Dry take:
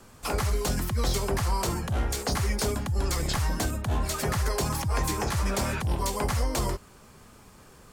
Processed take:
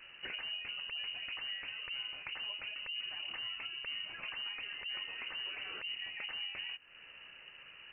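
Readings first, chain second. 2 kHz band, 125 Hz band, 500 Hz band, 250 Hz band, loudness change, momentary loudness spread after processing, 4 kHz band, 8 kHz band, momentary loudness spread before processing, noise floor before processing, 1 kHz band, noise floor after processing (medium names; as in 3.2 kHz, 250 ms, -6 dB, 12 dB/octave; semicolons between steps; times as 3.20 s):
-4.0 dB, under -40 dB, -28.5 dB, -32.5 dB, -11.0 dB, 10 LU, -0.5 dB, under -40 dB, 2 LU, -53 dBFS, -23.0 dB, -56 dBFS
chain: compression 6:1, threshold -39 dBFS, peak gain reduction 16 dB; frequency inversion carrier 2.9 kHz; trim -2.5 dB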